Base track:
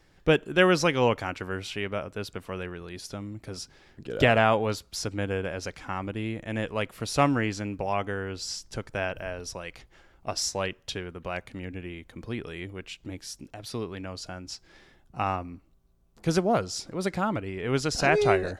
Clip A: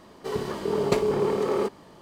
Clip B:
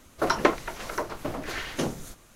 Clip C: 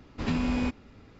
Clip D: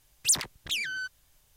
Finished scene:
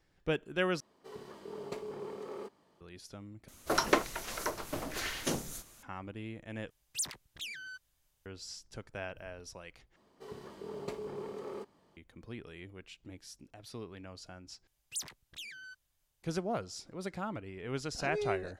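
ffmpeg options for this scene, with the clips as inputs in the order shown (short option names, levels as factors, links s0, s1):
-filter_complex "[1:a]asplit=2[s0][s1];[4:a]asplit=2[s2][s3];[0:a]volume=0.282[s4];[s0]lowshelf=f=140:g=-7[s5];[2:a]highshelf=f=3900:g=10[s6];[s4]asplit=6[s7][s8][s9][s10][s11][s12];[s7]atrim=end=0.804[s13];[s5]atrim=end=2.01,asetpts=PTS-STARTPTS,volume=0.133[s14];[s8]atrim=start=2.806:end=3.484[s15];[s6]atrim=end=2.35,asetpts=PTS-STARTPTS,volume=0.501[s16];[s9]atrim=start=5.826:end=6.704[s17];[s2]atrim=end=1.56,asetpts=PTS-STARTPTS,volume=0.266[s18];[s10]atrim=start=8.256:end=9.964[s19];[s1]atrim=end=2.01,asetpts=PTS-STARTPTS,volume=0.133[s20];[s11]atrim=start=11.966:end=14.674[s21];[s3]atrim=end=1.56,asetpts=PTS-STARTPTS,volume=0.178[s22];[s12]atrim=start=16.226[s23];[s13][s14]acrossfade=d=0.004:c1=hsin:c2=hsin[s24];[s24][s15]acrossfade=d=0.004:c1=hsin:c2=hsin[s25];[s25][s16]acrossfade=d=0.004:c1=hsin:c2=hsin[s26];[s26][s17]acrossfade=d=0.004:c1=hsin:c2=hsin[s27];[s27][s18]acrossfade=d=0.004:c1=hsin:c2=hsin[s28];[s28][s19]acrossfade=d=0.004:c1=hsin:c2=hsin[s29];[s29][s20]acrossfade=d=0.004:c1=hsin:c2=hsin[s30];[s30][s21]acrossfade=d=0.004:c1=hsin:c2=hsin[s31];[s31][s22]acrossfade=d=0.004:c1=hsin:c2=hsin[s32];[s32][s23]acrossfade=d=0.004:c1=hsin:c2=hsin"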